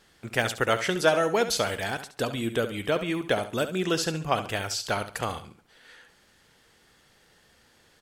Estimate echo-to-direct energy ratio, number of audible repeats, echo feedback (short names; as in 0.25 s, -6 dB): -11.0 dB, 3, 30%